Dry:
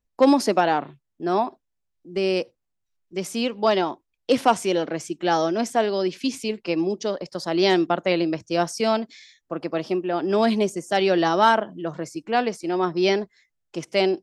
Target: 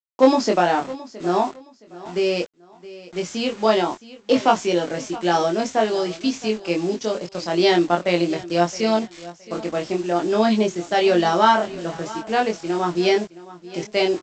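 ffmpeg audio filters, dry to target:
-filter_complex "[0:a]aresample=16000,acrusher=bits=6:mix=0:aa=0.000001,aresample=44100,asplit=2[a][b];[b]adelay=23,volume=-2.5dB[c];[a][c]amix=inputs=2:normalize=0,aecho=1:1:668|1336:0.126|0.0327"

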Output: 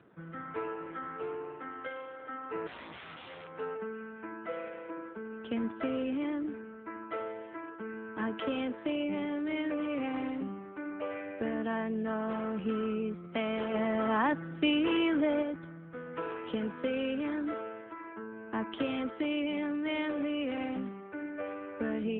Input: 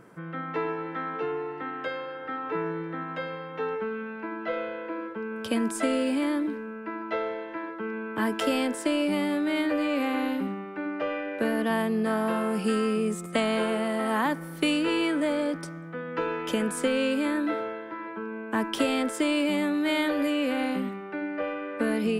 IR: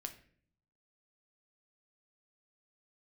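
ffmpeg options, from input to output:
-filter_complex "[0:a]asettb=1/sr,asplit=3[a][b][c];[a]atrim=end=2.674[d];[b]atrim=start=2.67:end=3.48,asetpts=PTS-STARTPTS,afade=t=in:d=0.004:c=qsin,afade=t=out:st=0.806:d=0.004:c=qsin,aeval=exprs='(mod(33.5*val(0)+1,2)-1)/33.5':c=same[e];[c]atrim=start=3.476[f];[d][e]acrossfade=d=0.004:c1=hsin:c2=qsin[g];[g][f]acrossfade=d=0.004:c1=qsin:c2=hsin,asettb=1/sr,asplit=3[h][i][j];[h]atrim=end=13.744[k];[i]atrim=start=13.74:end=15.43,asetpts=PTS-STARTPTS,afade=t=in:d=0.004:c=qsin,afade=t=out:st=1.686:d=0.004:c=qsin,acontrast=21[l];[j]atrim=start=15.426[m];[k][l]acrossfade=d=0.004:c1=hsin:c2=qsin[n];[n][m]acrossfade=d=0.004:c1=qsin:c2=hsin,volume=-6.5dB" -ar 8000 -c:a libopencore_amrnb -b:a 7400

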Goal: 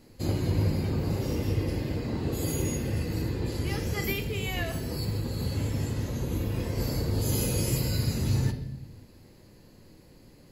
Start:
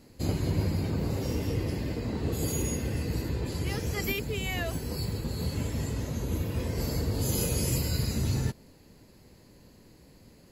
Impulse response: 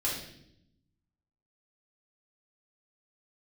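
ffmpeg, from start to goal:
-filter_complex "[0:a]asplit=2[a][b];[b]equalizer=f=7.6k:w=3.1:g=-12[c];[1:a]atrim=start_sample=2205[d];[c][d]afir=irnorm=-1:irlink=0,volume=-9dB[e];[a][e]amix=inputs=2:normalize=0,volume=-2.5dB"

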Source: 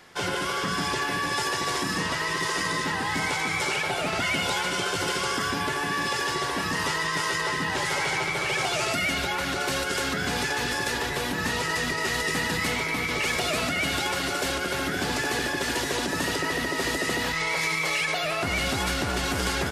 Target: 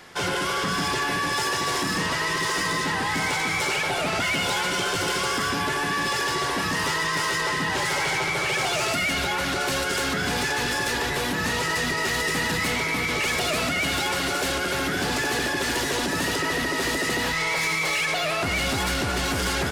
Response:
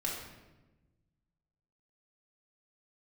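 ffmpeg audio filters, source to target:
-af "asoftclip=type=tanh:threshold=-25dB,volume=5dB"

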